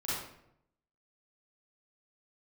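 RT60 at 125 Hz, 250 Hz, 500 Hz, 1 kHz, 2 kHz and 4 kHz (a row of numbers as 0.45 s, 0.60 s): 1.0 s, 0.85 s, 0.80 s, 0.70 s, 0.65 s, 0.50 s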